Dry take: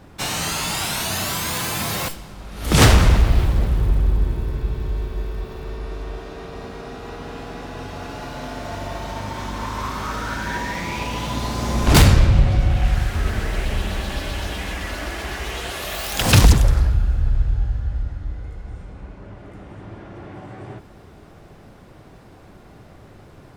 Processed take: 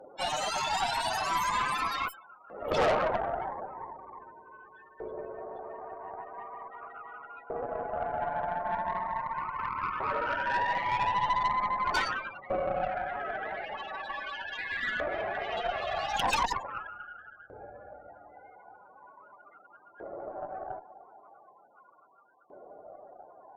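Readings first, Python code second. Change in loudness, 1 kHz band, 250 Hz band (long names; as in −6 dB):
−11.0 dB, −1.0 dB, −19.5 dB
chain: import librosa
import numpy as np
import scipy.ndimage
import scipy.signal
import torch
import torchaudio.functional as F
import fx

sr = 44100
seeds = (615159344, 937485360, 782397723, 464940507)

y = fx.spec_topn(x, sr, count=32)
y = fx.filter_lfo_highpass(y, sr, shape='saw_up', hz=0.4, low_hz=510.0, high_hz=1600.0, q=3.4)
y = fx.tube_stage(y, sr, drive_db=22.0, bias=0.65)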